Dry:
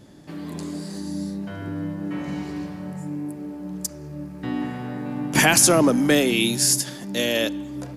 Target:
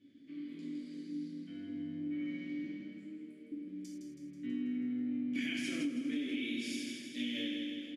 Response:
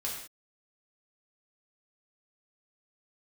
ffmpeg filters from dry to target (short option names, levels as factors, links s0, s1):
-filter_complex "[0:a]asplit=3[s0][s1][s2];[s0]bandpass=f=270:t=q:w=8,volume=1[s3];[s1]bandpass=f=2290:t=q:w=8,volume=0.501[s4];[s2]bandpass=f=3010:t=q:w=8,volume=0.355[s5];[s3][s4][s5]amix=inputs=3:normalize=0,bandreject=f=50:t=h:w=6,bandreject=f=100:t=h:w=6,bandreject=f=150:t=h:w=6,bandreject=f=200:t=h:w=6,bandreject=f=250:t=h:w=6,bandreject=f=300:t=h:w=6,asettb=1/sr,asplit=3[s6][s7][s8];[s6]atrim=end=2.644[s9];[s7]atrim=start=2.64:end=3.52,asetpts=PTS-STARTPTS,afade=t=in:d=0.004:c=qsin,afade=t=out:st=0.876:d=0.004:c=qsin,afreqshift=15[s10];[s8]atrim=start=3.516[s11];[s9][s10]acrossfade=d=0.004:c1=hsin:c2=qsin[s12];[s12][s11]acrossfade=d=0.004:c1=qsin:c2=hsin,aecho=1:1:162|324|486|648|810|972|1134|1296:0.501|0.291|0.169|0.0978|0.0567|0.0329|0.0191|0.0111[s13];[1:a]atrim=start_sample=2205,afade=t=out:st=0.17:d=0.01,atrim=end_sample=7938[s14];[s13][s14]afir=irnorm=-1:irlink=0,acompressor=threshold=0.0355:ratio=10,volume=0.631"